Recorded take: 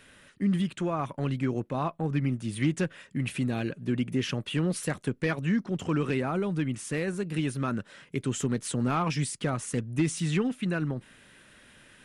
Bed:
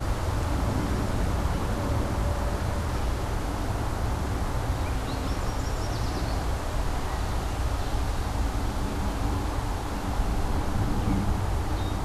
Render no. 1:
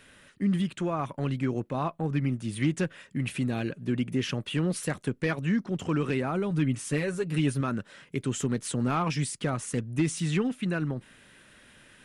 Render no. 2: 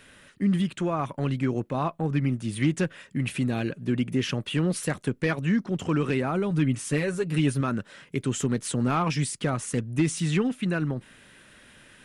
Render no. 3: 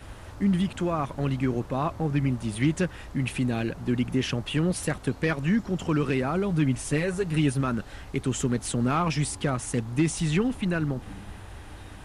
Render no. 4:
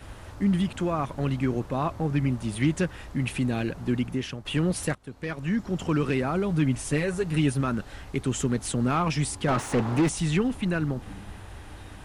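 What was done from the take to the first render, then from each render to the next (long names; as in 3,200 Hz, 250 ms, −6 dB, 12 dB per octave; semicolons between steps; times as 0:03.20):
0:06.50–0:07.61: comb filter 7.2 ms, depth 69%
level +2.5 dB
mix in bed −15.5 dB
0:03.92–0:04.45: fade out, to −11.5 dB; 0:04.95–0:05.78: fade in, from −22 dB; 0:09.48–0:10.09: mid-hump overdrive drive 28 dB, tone 1,000 Hz, clips at −14 dBFS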